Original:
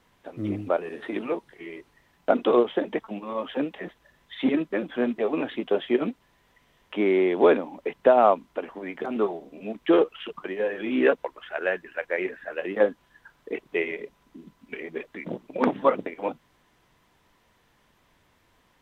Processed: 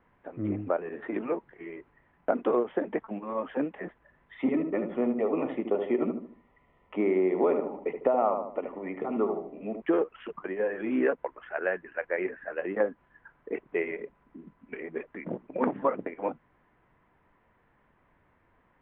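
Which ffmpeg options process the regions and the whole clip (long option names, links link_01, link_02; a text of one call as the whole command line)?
ffmpeg -i in.wav -filter_complex "[0:a]asettb=1/sr,asplit=3[link_01][link_02][link_03];[link_01]atrim=end=4.364[link_04];[link_02]atrim=start=4.36:end=9.82,asetpts=PTS-STARTPTS,afade=type=in:duration=0.004:curve=qsin,afade=type=out:start_time=5.456:duration=0.004:curve=qsin,asuperstop=centerf=1600:order=4:qfactor=4.2,asplit=2[link_05][link_06];[link_06]adelay=75,lowpass=frequency=1200:poles=1,volume=-6dB,asplit=2[link_07][link_08];[link_08]adelay=75,lowpass=frequency=1200:poles=1,volume=0.39,asplit=2[link_09][link_10];[link_10]adelay=75,lowpass=frequency=1200:poles=1,volume=0.39,asplit=2[link_11][link_12];[link_12]adelay=75,lowpass=frequency=1200:poles=1,volume=0.39,asplit=2[link_13][link_14];[link_14]adelay=75,lowpass=frequency=1200:poles=1,volume=0.39[link_15];[link_05][link_07][link_09][link_11][link_13][link_15]amix=inputs=6:normalize=0,atrim=end_sample=240786[link_16];[link_03]atrim=start=9.816[link_17];[link_04][link_16]acrossfade=duration=0.004:curve1=hsin:curve2=qsin[link_18];[link_18][link_17]acrossfade=duration=0.004:curve1=qsin:curve2=hsin,lowpass=frequency=2100:width=0.5412,lowpass=frequency=2100:width=1.3066,acompressor=threshold=-21dB:ratio=3,volume=-1.5dB" out.wav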